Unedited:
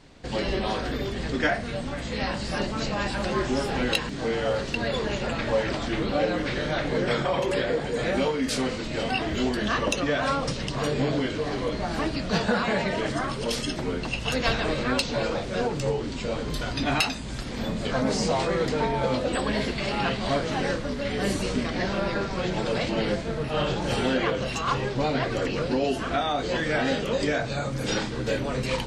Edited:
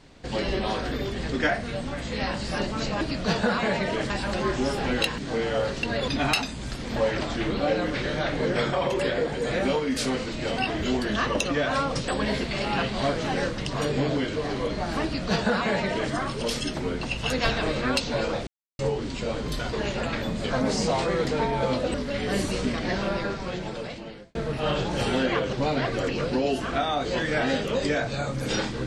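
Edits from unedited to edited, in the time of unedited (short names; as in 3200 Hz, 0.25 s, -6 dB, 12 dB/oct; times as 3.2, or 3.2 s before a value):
4.99–5.48 swap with 16.75–17.63
12.06–13.15 copy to 3.01
15.49–15.81 mute
19.35–20.85 move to 10.6
21.95–23.26 fade out
24.44–24.91 cut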